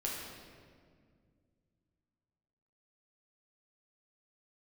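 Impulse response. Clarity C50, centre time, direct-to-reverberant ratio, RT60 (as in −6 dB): 0.0 dB, 95 ms, −4.5 dB, 2.0 s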